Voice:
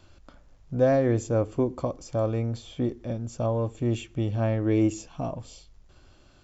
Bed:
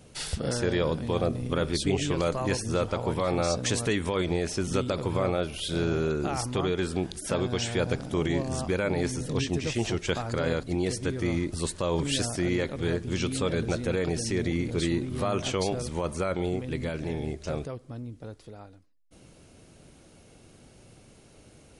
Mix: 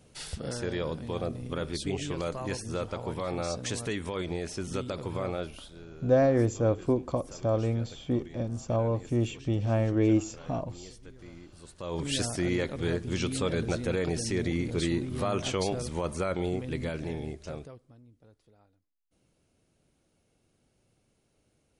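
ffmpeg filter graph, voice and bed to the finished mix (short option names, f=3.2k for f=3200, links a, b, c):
-filter_complex "[0:a]adelay=5300,volume=-1dB[a];[1:a]volume=13dB,afade=t=out:st=5.45:d=0.23:silence=0.188365,afade=t=in:st=11.68:d=0.52:silence=0.112202,afade=t=out:st=16.92:d=1.05:silence=0.158489[b];[a][b]amix=inputs=2:normalize=0"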